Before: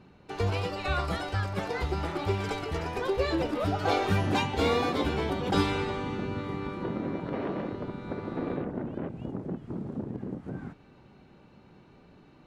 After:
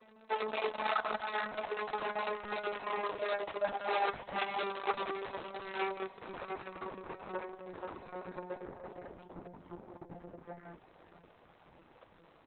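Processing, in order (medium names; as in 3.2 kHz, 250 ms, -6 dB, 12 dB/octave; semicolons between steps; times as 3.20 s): vocoder on a note that slides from A3, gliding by -5 st; in parallel at -2 dB: peak limiter -26.5 dBFS, peak gain reduction 11.5 dB; on the sum: compression 10:1, threshold -30 dBFS, peak gain reduction 13 dB; chorus 3 Hz, delay 16 ms, depth 2.7 ms; high-pass 770 Hz 12 dB/octave; feedback delay 486 ms, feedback 55%, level -14 dB; trim +11.5 dB; Opus 6 kbps 48 kHz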